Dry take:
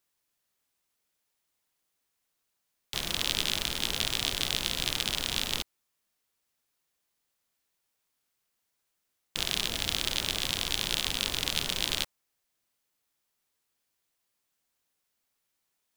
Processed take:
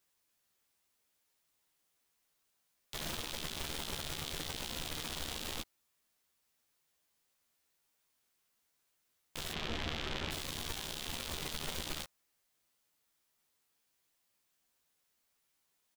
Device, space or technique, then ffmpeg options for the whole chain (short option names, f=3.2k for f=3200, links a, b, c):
de-esser from a sidechain: -filter_complex "[0:a]asplit=3[a][b][c];[a]afade=t=out:st=9.52:d=0.02[d];[b]lowpass=2.8k,afade=t=in:st=9.52:d=0.02,afade=t=out:st=10.3:d=0.02[e];[c]afade=t=in:st=10.3:d=0.02[f];[d][e][f]amix=inputs=3:normalize=0,asplit=2[g][h];[h]highpass=f=4.2k:p=1,apad=whole_len=703939[i];[g][i]sidechaincompress=threshold=-36dB:ratio=12:attack=0.75:release=24,asplit=2[j][k];[k]adelay=13,volume=-5dB[l];[j][l]amix=inputs=2:normalize=0"